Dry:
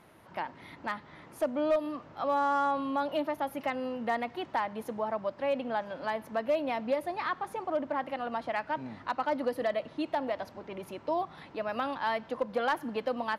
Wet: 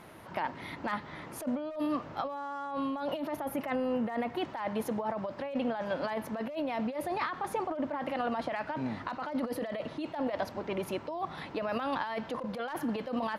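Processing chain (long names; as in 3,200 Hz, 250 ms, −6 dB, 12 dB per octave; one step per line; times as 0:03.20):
0:03.39–0:04.38: parametric band 4,500 Hz −6.5 dB 1.5 octaves
compressor whose output falls as the input rises −36 dBFS, ratio −1
level +2.5 dB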